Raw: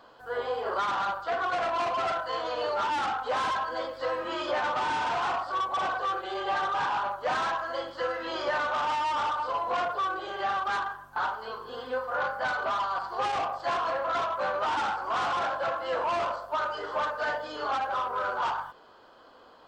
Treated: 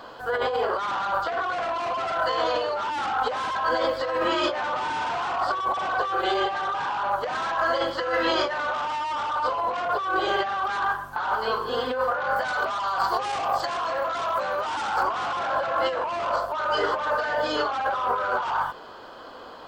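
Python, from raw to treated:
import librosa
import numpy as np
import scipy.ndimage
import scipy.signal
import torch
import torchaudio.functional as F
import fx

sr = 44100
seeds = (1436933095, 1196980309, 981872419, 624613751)

y = fx.high_shelf(x, sr, hz=6300.0, db=11.5, at=(12.36, 15.03))
y = fx.over_compress(y, sr, threshold_db=-34.0, ratio=-1.0)
y = y * librosa.db_to_amplitude(8.0)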